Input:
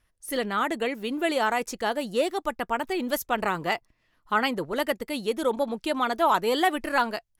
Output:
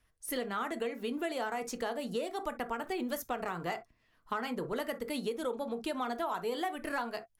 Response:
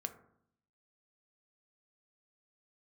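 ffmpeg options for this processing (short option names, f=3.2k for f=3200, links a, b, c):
-filter_complex "[0:a]acrossover=split=150|1800|4400[a][b][c][d];[c]asoftclip=type=tanh:threshold=-31.5dB[e];[a][b][e][d]amix=inputs=4:normalize=0[f];[1:a]atrim=start_sample=2205,atrim=end_sample=3087[g];[f][g]afir=irnorm=-1:irlink=0,acompressor=threshold=-32dB:ratio=6"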